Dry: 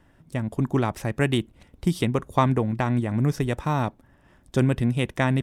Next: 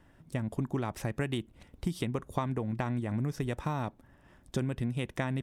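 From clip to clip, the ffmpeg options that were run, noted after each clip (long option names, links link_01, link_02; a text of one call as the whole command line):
ffmpeg -i in.wav -af "acompressor=threshold=-26dB:ratio=6,volume=-2.5dB" out.wav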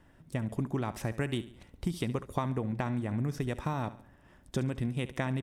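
ffmpeg -i in.wav -af "aecho=1:1:70|140|210|280:0.168|0.0722|0.031|0.0133" out.wav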